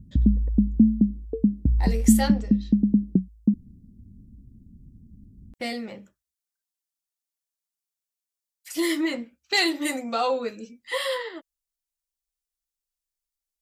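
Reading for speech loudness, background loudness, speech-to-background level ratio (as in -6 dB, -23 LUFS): -27.5 LUFS, -22.5 LUFS, -5.0 dB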